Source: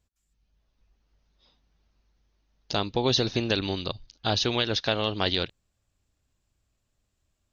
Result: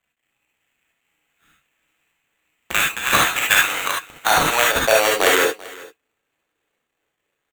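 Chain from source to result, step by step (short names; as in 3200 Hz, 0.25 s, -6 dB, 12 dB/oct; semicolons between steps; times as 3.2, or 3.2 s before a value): G.711 law mismatch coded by A; HPF 210 Hz 24 dB/oct; bell 2000 Hz +8.5 dB 1.5 oct; in parallel at -2 dB: vocal rider within 4 dB 0.5 s; on the sum: high-pass sweep 2300 Hz -> 420 Hz, 2.92–5.33; sample-rate reducer 5100 Hz, jitter 0%; on a send: echo 0.389 s -21 dB; on the sum: non-linear reverb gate 90 ms rising, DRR -2 dB; gain -2 dB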